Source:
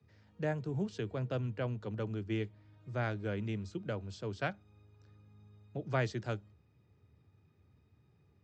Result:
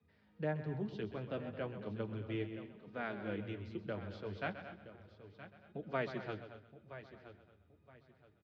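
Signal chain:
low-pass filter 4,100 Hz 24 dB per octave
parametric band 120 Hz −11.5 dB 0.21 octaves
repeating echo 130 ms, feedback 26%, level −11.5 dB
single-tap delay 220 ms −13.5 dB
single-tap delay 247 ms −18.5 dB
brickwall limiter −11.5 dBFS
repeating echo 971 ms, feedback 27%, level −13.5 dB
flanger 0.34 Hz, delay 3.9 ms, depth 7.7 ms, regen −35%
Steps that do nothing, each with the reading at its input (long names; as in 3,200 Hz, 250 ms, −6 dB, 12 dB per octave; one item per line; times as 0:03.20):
brickwall limiter −11.5 dBFS: peak of its input −20.5 dBFS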